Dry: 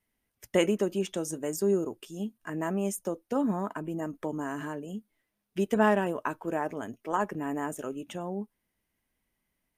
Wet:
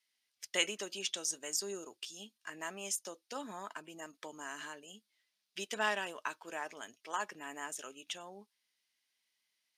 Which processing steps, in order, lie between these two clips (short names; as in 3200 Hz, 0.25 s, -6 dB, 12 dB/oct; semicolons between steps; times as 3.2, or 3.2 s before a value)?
band-pass 4500 Hz, Q 1.9; gain +10.5 dB